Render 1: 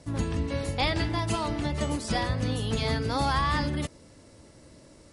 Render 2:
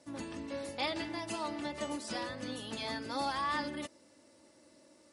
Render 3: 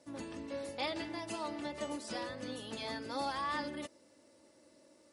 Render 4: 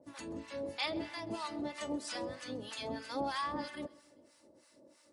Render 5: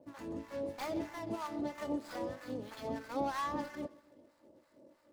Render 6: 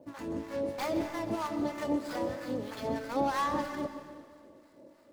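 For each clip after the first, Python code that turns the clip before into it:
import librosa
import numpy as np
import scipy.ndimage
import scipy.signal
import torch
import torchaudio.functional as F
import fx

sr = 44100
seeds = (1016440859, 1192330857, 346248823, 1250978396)

y1 = scipy.signal.sosfilt(scipy.signal.bessel(2, 270.0, 'highpass', norm='mag', fs=sr, output='sos'), x)
y1 = y1 + 0.46 * np.pad(y1, (int(3.4 * sr / 1000.0), 0))[:len(y1)]
y1 = y1 * librosa.db_to_amplitude(-8.0)
y2 = fx.peak_eq(y1, sr, hz=480.0, db=3.5, octaves=0.81)
y2 = y2 * librosa.db_to_amplitude(-3.0)
y3 = fx.harmonic_tremolo(y2, sr, hz=3.1, depth_pct=100, crossover_hz=870.0)
y3 = fx.echo_feedback(y3, sr, ms=131, feedback_pct=57, wet_db=-23.0)
y3 = y3 * librosa.db_to_amplitude(5.0)
y4 = scipy.ndimage.median_filter(y3, 15, mode='constant')
y4 = y4 * librosa.db_to_amplitude(1.5)
y5 = fx.rev_freeverb(y4, sr, rt60_s=1.8, hf_ratio=1.0, predelay_ms=85, drr_db=9.5)
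y5 = y5 * librosa.db_to_amplitude(5.5)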